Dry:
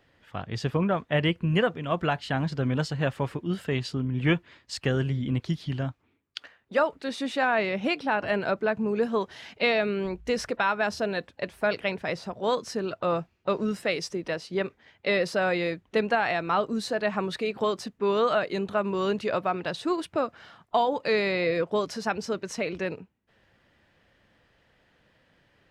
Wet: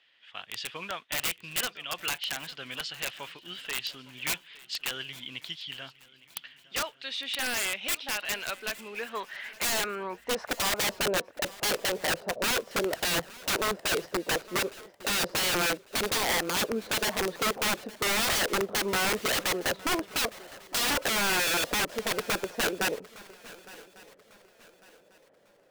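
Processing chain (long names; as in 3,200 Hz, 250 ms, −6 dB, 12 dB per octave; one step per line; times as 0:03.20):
noise that follows the level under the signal 31 dB
band-pass filter sweep 3,100 Hz → 550 Hz, 0:08.70–0:10.99
wrap-around overflow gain 30.5 dB
on a send: feedback echo with a long and a short gap by turns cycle 1,148 ms, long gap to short 3 to 1, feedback 33%, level −20 dB
on the sum: level +8.5 dB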